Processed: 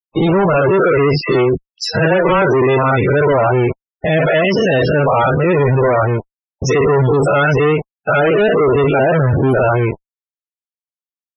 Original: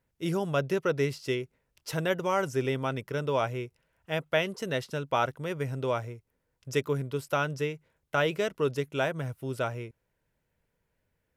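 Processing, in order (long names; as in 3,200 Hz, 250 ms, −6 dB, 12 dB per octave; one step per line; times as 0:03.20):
every bin's largest magnitude spread in time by 120 ms
fuzz pedal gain 39 dB, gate −42 dBFS
spectral peaks only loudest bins 32
0:01.21–0:02.42: all-pass dispersion lows, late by 77 ms, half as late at 820 Hz
level +3 dB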